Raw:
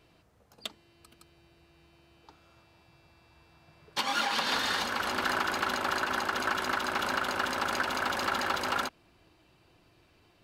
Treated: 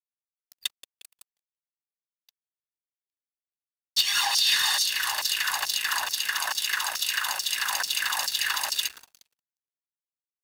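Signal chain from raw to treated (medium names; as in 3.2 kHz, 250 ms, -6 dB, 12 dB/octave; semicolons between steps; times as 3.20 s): comb 1.1 ms, depth 67%; frequency-shifting echo 178 ms, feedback 52%, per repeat -83 Hz, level -16.5 dB; LFO high-pass saw down 2.3 Hz 480–6000 Hz; differentiator; crossover distortion -58 dBFS; waveshaping leveller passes 2; 6.10–7.53 s: bass shelf 190 Hz -6 dB; trim +4.5 dB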